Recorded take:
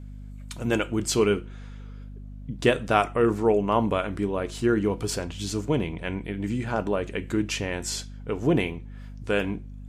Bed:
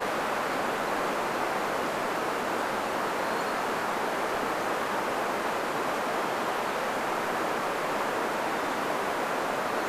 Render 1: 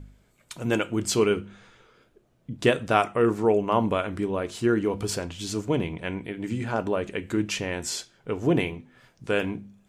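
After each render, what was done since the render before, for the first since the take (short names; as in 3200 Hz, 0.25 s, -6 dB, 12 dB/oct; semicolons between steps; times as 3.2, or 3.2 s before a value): de-hum 50 Hz, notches 5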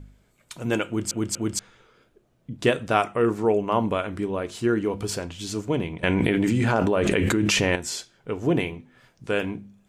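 0.87 stutter in place 0.24 s, 3 plays; 6.03–7.76 fast leveller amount 100%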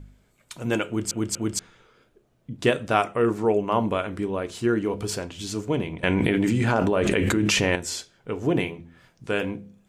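de-hum 84.83 Hz, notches 8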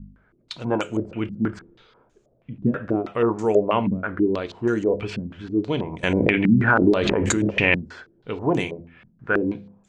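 stepped low-pass 6.2 Hz 210–6800 Hz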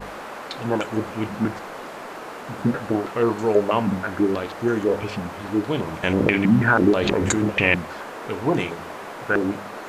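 add bed -6 dB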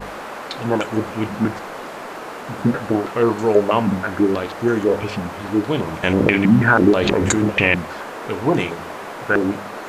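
gain +3.5 dB; limiter -1 dBFS, peak gain reduction 2 dB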